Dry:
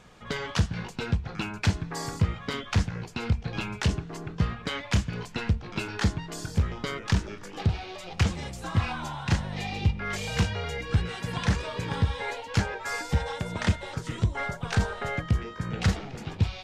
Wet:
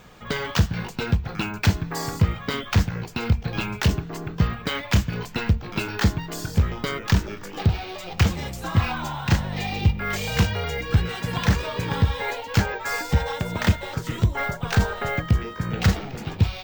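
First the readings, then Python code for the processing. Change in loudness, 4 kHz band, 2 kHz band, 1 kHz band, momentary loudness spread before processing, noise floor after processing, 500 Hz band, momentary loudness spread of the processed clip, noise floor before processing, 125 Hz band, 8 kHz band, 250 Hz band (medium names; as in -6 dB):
+5.0 dB, +4.5 dB, +5.0 dB, +5.0 dB, 6 LU, -38 dBFS, +5.0 dB, 6 LU, -43 dBFS, +5.0 dB, +4.0 dB, +5.0 dB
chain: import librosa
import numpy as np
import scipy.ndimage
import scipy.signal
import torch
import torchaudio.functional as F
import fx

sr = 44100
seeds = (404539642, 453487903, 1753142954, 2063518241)

y = np.repeat(x[::2], 2)[:len(x)]
y = y * librosa.db_to_amplitude(5.0)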